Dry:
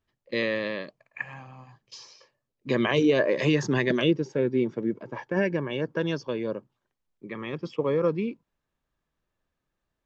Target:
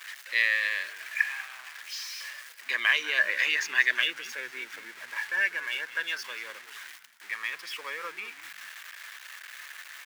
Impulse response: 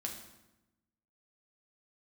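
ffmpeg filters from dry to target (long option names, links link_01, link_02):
-filter_complex "[0:a]aeval=exprs='val(0)+0.5*0.015*sgn(val(0))':channel_layout=same,highpass=frequency=1800:width_type=q:width=2.5,asplit=4[link_01][link_02][link_03][link_04];[link_02]adelay=193,afreqshift=-100,volume=-15.5dB[link_05];[link_03]adelay=386,afreqshift=-200,volume=-26dB[link_06];[link_04]adelay=579,afreqshift=-300,volume=-36.4dB[link_07];[link_01][link_05][link_06][link_07]amix=inputs=4:normalize=0"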